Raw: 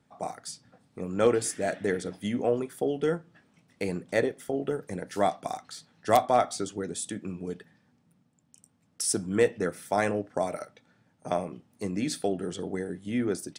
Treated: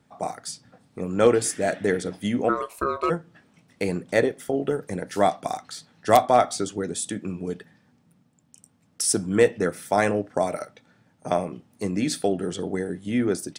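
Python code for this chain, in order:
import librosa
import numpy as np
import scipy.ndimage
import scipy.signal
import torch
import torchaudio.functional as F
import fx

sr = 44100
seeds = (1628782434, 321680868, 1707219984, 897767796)

y = fx.ring_mod(x, sr, carrier_hz=820.0, at=(2.48, 3.09), fade=0.02)
y = y * librosa.db_to_amplitude(5.0)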